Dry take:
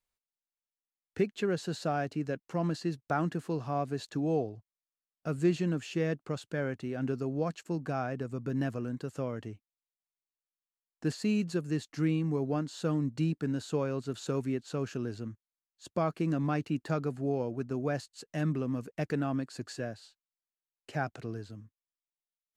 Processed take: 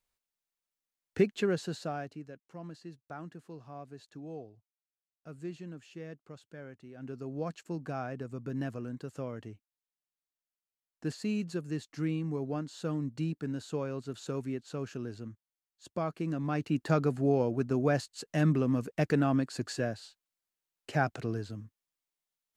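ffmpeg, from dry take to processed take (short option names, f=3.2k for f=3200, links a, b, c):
-af "volume=21dB,afade=t=out:st=1.3:d=0.53:silence=0.446684,afade=t=out:st=1.83:d=0.46:silence=0.334965,afade=t=in:st=6.94:d=0.53:silence=0.316228,afade=t=in:st=16.44:d=0.5:silence=0.398107"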